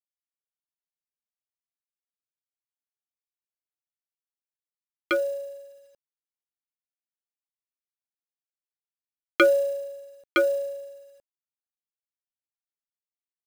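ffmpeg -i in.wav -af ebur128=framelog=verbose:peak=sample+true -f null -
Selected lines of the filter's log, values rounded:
Integrated loudness:
  I:         -25.3 LUFS
  Threshold: -37.3 LUFS
Loudness range:
  LRA:         8.3 LU
  Threshold: -51.0 LUFS
  LRA low:   -35.7 LUFS
  LRA high:  -27.4 LUFS
Sample peak:
  Peak:      -11.4 dBFS
True peak:
  Peak:      -11.0 dBFS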